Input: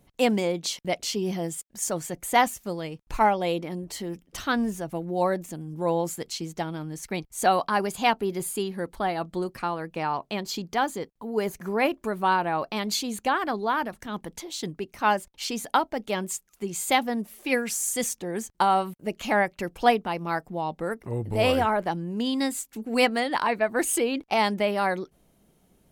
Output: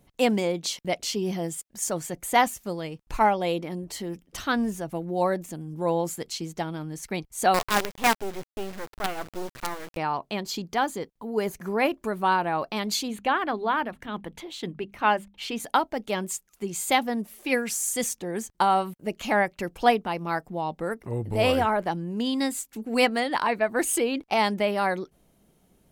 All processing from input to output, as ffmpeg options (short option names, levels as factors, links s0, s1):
-filter_complex "[0:a]asettb=1/sr,asplit=3[s0][s1][s2];[s0]atrim=end=7.544[s3];[s1]atrim=start=7.54:end=9.97,asetpts=PTS-STARTPTS,afade=t=in:d=0.004:c=qsin,afade=t=out:st=2.426:d=0.004:c=qsin,lowpass=f=3200:w=0.5412,lowpass=f=3200:w=1.3066,equalizer=f=120:w=5.7:g=7.5,acrusher=bits=4:dc=4:mix=0:aa=0.000001[s4];[s2]atrim=start=9.966[s5];[s3][s4]acrossfade=d=0.004:c1=hsin:c2=qsin[s6];[s6][s5]acrossfade=d=0.004:c1=qsin:c2=hsin,asettb=1/sr,asplit=3[s7][s8][s9];[s7]atrim=end=13.084[s10];[s8]atrim=start=13.08:end=15.6,asetpts=PTS-STARTPTS,afade=t=in:d=0.004:c=qsin,afade=t=out:st=2.516:d=0.004:c=qsin,highshelf=f=4100:t=q:w=1.5:g=-8,bandreject=f=50:t=h:w=6,bandreject=f=100:t=h:w=6,bandreject=f=150:t=h:w=6,bandreject=f=200:t=h:w=6,bandreject=f=250:t=h:w=6[s11];[s9]atrim=start=15.596[s12];[s10][s11]acrossfade=d=0.004:c1=hsin:c2=qsin[s13];[s13][s12]acrossfade=d=0.004:c1=qsin:c2=hsin"